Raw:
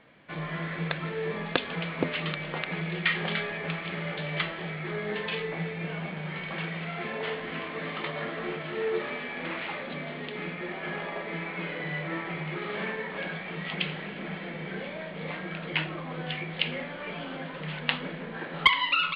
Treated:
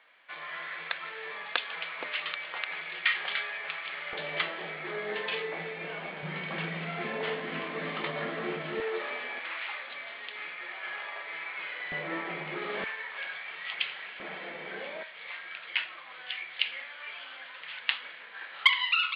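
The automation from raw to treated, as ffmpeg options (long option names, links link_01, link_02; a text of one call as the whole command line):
ffmpeg -i in.wav -af "asetnsamples=nb_out_samples=441:pad=0,asendcmd='4.13 highpass f 380;6.23 highpass f 150;8.8 highpass f 530;9.39 highpass f 1100;11.92 highpass f 290;12.84 highpass f 1200;14.2 highpass f 460;15.03 highpass f 1500',highpass=1000" out.wav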